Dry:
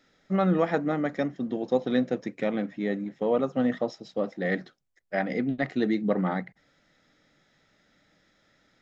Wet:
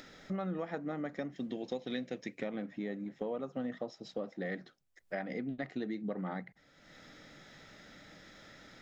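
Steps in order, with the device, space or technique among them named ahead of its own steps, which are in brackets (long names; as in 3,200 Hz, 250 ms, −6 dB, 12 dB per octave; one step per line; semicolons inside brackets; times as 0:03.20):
0:01.32–0:02.38: high shelf with overshoot 1,700 Hz +7 dB, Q 1.5
upward and downward compression (upward compression, threshold −44 dBFS; downward compressor 4 to 1, threshold −37 dBFS, peak gain reduction 15.5 dB)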